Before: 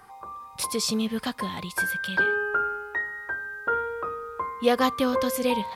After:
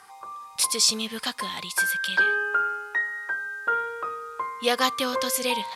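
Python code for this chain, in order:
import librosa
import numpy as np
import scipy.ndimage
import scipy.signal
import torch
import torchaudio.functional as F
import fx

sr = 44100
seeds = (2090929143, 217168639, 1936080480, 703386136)

y = scipy.signal.sosfilt(scipy.signal.butter(2, 9000.0, 'lowpass', fs=sr, output='sos'), x)
y = fx.tilt_eq(y, sr, slope=3.5)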